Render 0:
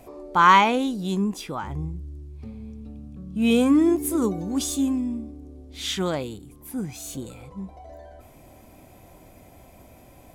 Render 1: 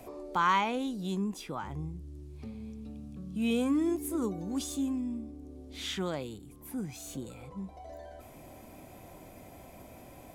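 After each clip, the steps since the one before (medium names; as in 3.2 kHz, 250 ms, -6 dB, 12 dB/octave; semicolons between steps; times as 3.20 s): three bands compressed up and down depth 40%; trim -8 dB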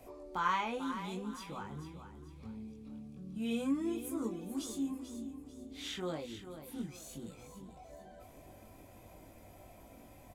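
chorus voices 6, 0.71 Hz, delay 20 ms, depth 2.2 ms; on a send: feedback delay 441 ms, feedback 35%, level -10.5 dB; on the sum: trim -3 dB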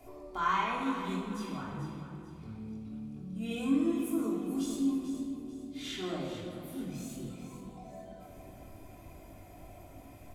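simulated room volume 2600 m³, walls mixed, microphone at 3.2 m; trim -2 dB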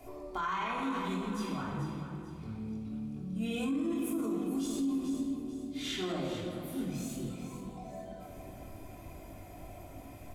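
peak limiter -29 dBFS, peak gain reduction 10.5 dB; trim +3 dB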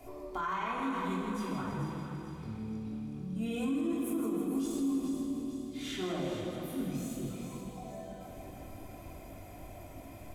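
dynamic bell 4 kHz, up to -5 dB, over -54 dBFS, Q 0.73; thinning echo 160 ms, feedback 70%, high-pass 230 Hz, level -8.5 dB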